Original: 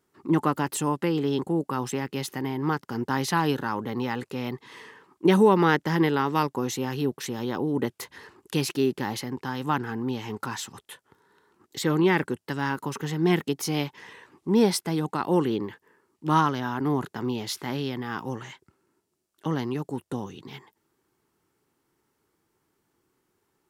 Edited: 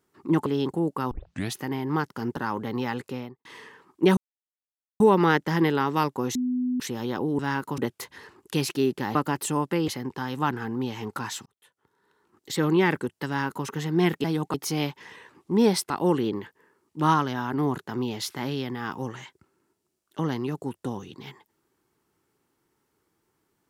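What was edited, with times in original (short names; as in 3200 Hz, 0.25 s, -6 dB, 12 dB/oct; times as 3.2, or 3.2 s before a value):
0.46–1.19 move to 9.15
1.84 tape start 0.43 s
3.1–3.59 cut
4.27–4.67 studio fade out
5.39 insert silence 0.83 s
6.74–7.19 bleep 250 Hz -23 dBFS
10.73–11.88 fade in linear
12.54–12.93 copy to 7.78
14.87–15.17 move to 13.51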